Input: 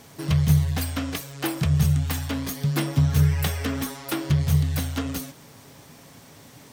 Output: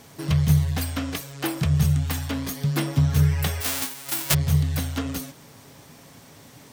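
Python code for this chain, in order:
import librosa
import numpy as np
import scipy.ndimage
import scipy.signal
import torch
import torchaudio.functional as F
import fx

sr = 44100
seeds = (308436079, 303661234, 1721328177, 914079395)

y = fx.envelope_flatten(x, sr, power=0.1, at=(3.6, 4.33), fade=0.02)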